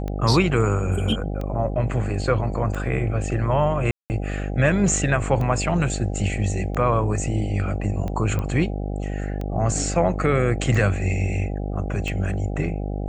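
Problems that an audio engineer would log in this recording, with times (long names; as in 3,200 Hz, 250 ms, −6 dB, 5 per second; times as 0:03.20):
mains buzz 50 Hz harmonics 16 −27 dBFS
scratch tick 45 rpm −18 dBFS
0:03.91–0:04.10: drop-out 189 ms
0:08.39: click −15 dBFS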